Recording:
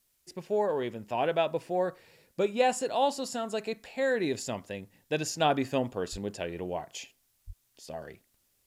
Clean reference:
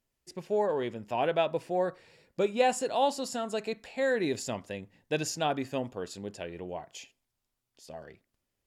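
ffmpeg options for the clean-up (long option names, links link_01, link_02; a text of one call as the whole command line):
ffmpeg -i in.wav -filter_complex "[0:a]asplit=3[link_01][link_02][link_03];[link_01]afade=type=out:start_time=6.11:duration=0.02[link_04];[link_02]highpass=frequency=140:width=0.5412,highpass=frequency=140:width=1.3066,afade=type=in:start_time=6.11:duration=0.02,afade=type=out:start_time=6.23:duration=0.02[link_05];[link_03]afade=type=in:start_time=6.23:duration=0.02[link_06];[link_04][link_05][link_06]amix=inputs=3:normalize=0,asplit=3[link_07][link_08][link_09];[link_07]afade=type=out:start_time=7.46:duration=0.02[link_10];[link_08]highpass=frequency=140:width=0.5412,highpass=frequency=140:width=1.3066,afade=type=in:start_time=7.46:duration=0.02,afade=type=out:start_time=7.58:duration=0.02[link_11];[link_09]afade=type=in:start_time=7.58:duration=0.02[link_12];[link_10][link_11][link_12]amix=inputs=3:normalize=0,agate=range=-21dB:threshold=-64dB,asetnsamples=nb_out_samples=441:pad=0,asendcmd='5.4 volume volume -4dB',volume=0dB" out.wav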